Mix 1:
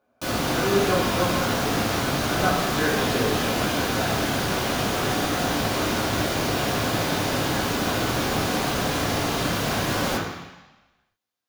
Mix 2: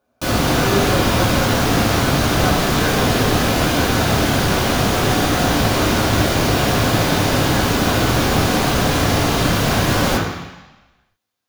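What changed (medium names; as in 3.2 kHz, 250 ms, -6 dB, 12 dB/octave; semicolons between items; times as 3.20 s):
background +6.5 dB; master: add bass shelf 110 Hz +8.5 dB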